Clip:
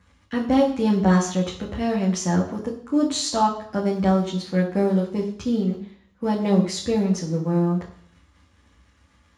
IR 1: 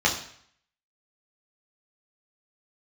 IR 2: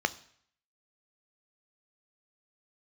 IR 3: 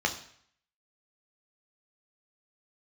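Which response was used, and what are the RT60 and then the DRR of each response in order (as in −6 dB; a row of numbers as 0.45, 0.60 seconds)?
1; 0.60, 0.60, 0.60 seconds; −3.5, 12.0, 2.5 decibels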